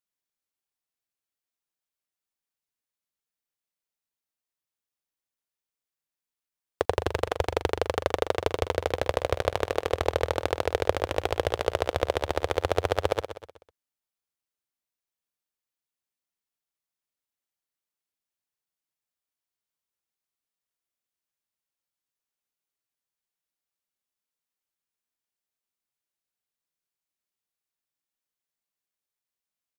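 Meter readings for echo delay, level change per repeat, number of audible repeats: 0.125 s, -7.5 dB, 4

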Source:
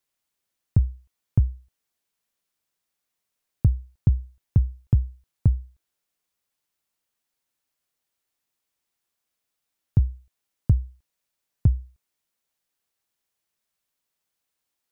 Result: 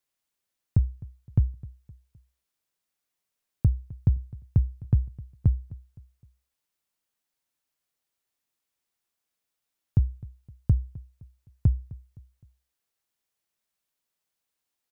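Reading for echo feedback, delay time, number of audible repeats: 41%, 0.258 s, 2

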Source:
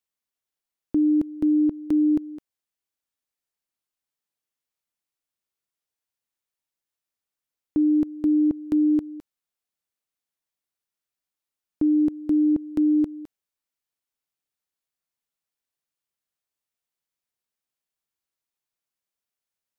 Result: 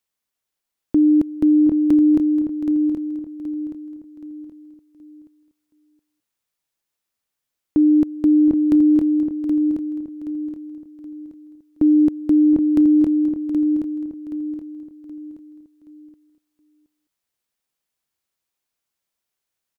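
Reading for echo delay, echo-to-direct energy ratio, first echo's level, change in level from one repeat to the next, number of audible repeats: 0.721 s, -6.5 dB, -13.5 dB, no steady repeat, 7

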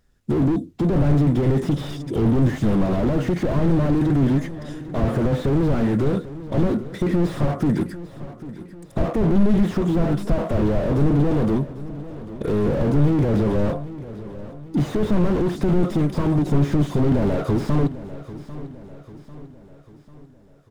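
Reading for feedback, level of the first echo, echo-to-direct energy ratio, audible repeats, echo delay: 50%, -15.5 dB, -14.5 dB, 4, 0.795 s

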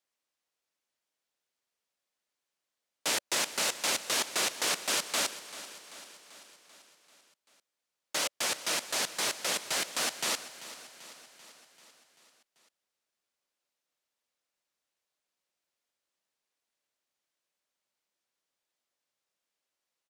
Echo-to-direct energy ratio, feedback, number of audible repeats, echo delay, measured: -13.0 dB, 60%, 5, 0.389 s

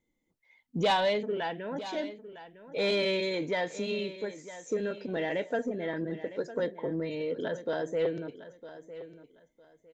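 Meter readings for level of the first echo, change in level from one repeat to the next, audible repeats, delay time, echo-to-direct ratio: -14.5 dB, -13.0 dB, 2, 0.956 s, -14.5 dB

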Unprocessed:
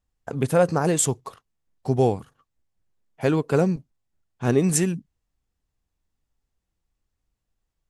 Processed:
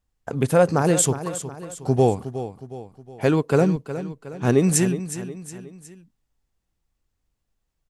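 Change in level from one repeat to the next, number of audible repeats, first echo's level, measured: -6.5 dB, 3, -12.0 dB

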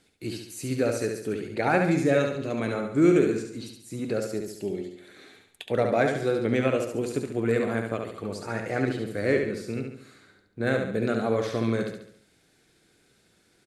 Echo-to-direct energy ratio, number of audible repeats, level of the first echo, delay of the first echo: -4.0 dB, 5, -5.0 dB, 70 ms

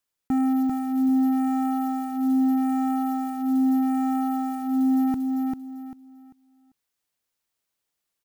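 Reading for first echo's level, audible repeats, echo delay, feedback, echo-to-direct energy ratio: -3.5 dB, 3, 0.394 s, 27%, -3.0 dB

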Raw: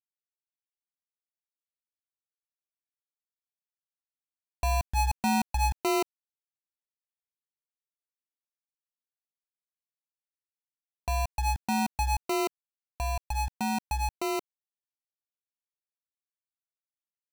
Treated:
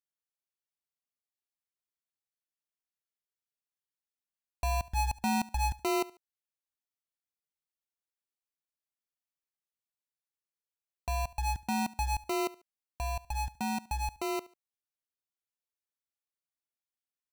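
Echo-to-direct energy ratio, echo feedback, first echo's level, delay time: -20.0 dB, 30%, -20.5 dB, 72 ms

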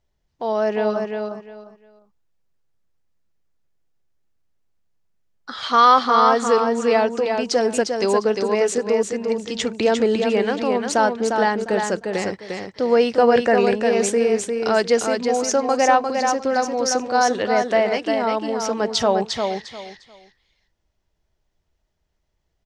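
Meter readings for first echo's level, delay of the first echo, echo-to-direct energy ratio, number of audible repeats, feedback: -5.0 dB, 0.352 s, -5.0 dB, 3, 23%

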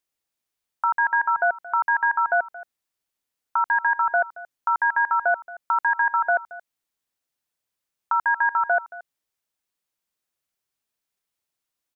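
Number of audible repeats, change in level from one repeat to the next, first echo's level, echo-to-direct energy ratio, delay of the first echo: 1, no steady repeat, -18.0 dB, -18.0 dB, 0.225 s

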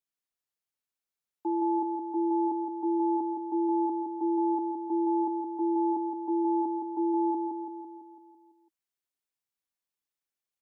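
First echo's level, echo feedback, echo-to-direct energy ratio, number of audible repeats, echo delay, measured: -4.5 dB, 59%, -2.5 dB, 7, 0.167 s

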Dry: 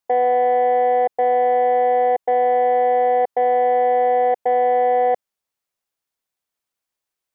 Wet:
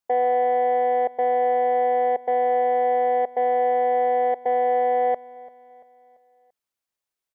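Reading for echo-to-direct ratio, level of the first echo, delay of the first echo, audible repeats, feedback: -19.0 dB, -20.0 dB, 0.34 s, 3, 47%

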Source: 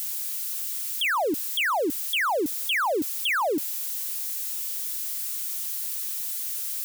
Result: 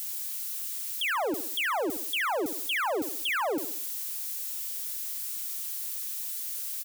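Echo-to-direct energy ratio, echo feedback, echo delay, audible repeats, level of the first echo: -9.0 dB, 44%, 68 ms, 4, -10.0 dB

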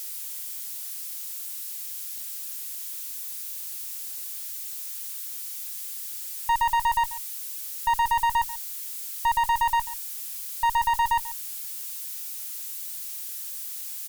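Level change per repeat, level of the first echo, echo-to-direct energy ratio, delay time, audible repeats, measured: no steady repeat, -17.0 dB, -17.0 dB, 0.14 s, 1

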